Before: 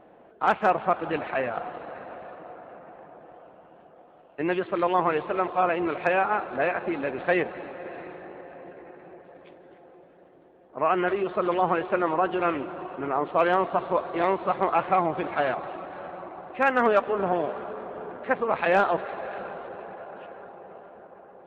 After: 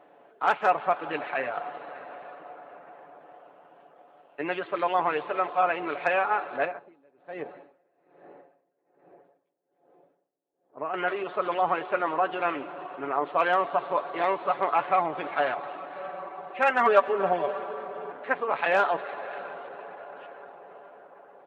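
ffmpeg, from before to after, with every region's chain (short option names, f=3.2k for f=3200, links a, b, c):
-filter_complex "[0:a]asettb=1/sr,asplit=3[a][b][c];[a]atrim=end=6.654[d];[b]atrim=start=6.65:end=10.94,asetpts=PTS-STARTPTS,afade=t=in:d=0.004:c=qsin,afade=t=out:st=4.286:d=0.004:c=qsin,equalizer=f=2.5k:t=o:w=2.8:g=-13,aeval=exprs='val(0)*pow(10,-27*(0.5-0.5*cos(2*PI*1.2*n/s))/20)':c=same[e];[c]atrim=start=10.936[f];[d][e]acrossfade=d=0.004:c1=hsin:c2=qsin[g];[g][f]acrossfade=d=0.004:c1=qsin:c2=hsin,asettb=1/sr,asplit=3[h][i][j];[h]atrim=end=15.954[k];[i]atrim=start=15.95:end=18.11,asetpts=PTS-STARTPTS,afade=t=in:d=0.004:c=qsin,afade=t=out:st=2.156:d=0.004:c=qsin,aecho=1:1:5.2:0.71,atrim=end_sample=95256,aecho=1:1:291|582|873:0.0944|0.0397|0.0167,atrim=end_sample=95256[l];[j]atrim=start=18.106[m];[k][l]acrossfade=d=0.004:c1=hsin:c2=qsin[n];[n][m]acrossfade=d=0.004:c1=qsin:c2=hsin,highpass=f=580:p=1,aecho=1:1:7:0.4"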